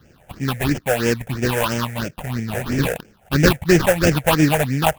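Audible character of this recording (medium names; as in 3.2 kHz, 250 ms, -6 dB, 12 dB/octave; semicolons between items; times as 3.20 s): aliases and images of a low sample rate 2.1 kHz, jitter 20%; phasing stages 6, 3 Hz, lowest notch 280–1100 Hz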